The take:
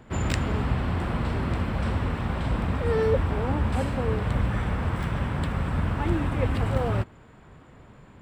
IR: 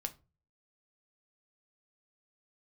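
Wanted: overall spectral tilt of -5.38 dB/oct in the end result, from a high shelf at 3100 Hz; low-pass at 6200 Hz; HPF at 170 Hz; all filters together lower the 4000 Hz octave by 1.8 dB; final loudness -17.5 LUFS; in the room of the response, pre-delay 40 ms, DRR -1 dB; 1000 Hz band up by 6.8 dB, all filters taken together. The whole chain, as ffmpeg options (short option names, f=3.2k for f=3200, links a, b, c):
-filter_complex "[0:a]highpass=170,lowpass=6.2k,equalizer=f=1k:t=o:g=8,highshelf=f=3.1k:g=7,equalizer=f=4k:t=o:g=-8,asplit=2[a][b];[1:a]atrim=start_sample=2205,adelay=40[c];[b][c]afir=irnorm=-1:irlink=0,volume=2dB[d];[a][d]amix=inputs=2:normalize=0,volume=6.5dB"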